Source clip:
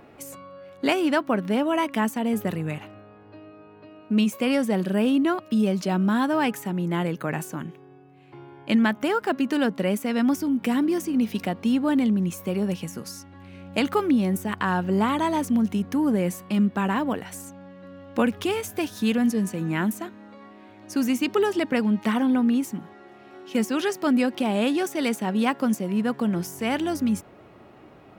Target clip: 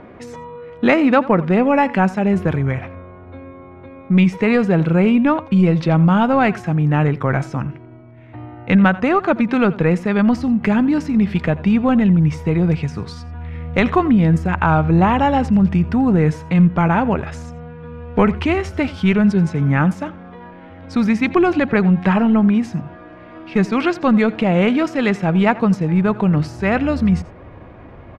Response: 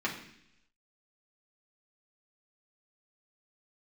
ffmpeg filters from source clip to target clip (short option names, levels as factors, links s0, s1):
-filter_complex "[0:a]acontrast=61,asubboost=boost=4.5:cutoff=110,asetrate=38170,aresample=44100,atempo=1.15535,lowpass=2900,asplit=2[s0][s1];[s1]aecho=0:1:86:0.112[s2];[s0][s2]amix=inputs=2:normalize=0,volume=1.5"